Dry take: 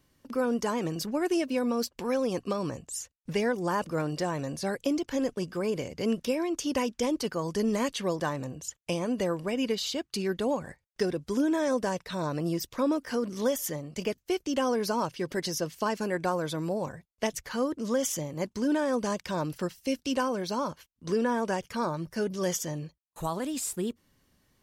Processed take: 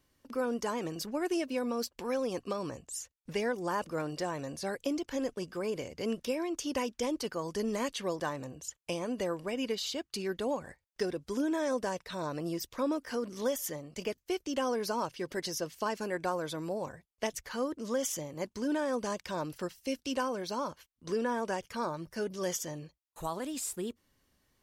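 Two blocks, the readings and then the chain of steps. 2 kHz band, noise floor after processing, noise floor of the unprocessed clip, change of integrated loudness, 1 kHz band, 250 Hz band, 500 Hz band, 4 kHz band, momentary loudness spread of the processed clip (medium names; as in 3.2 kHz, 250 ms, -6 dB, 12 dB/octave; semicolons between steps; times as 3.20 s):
-3.5 dB, -79 dBFS, -74 dBFS, -4.5 dB, -3.5 dB, -6.0 dB, -4.0 dB, -3.5 dB, 6 LU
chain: peaking EQ 160 Hz -5 dB 1.3 oct; trim -3.5 dB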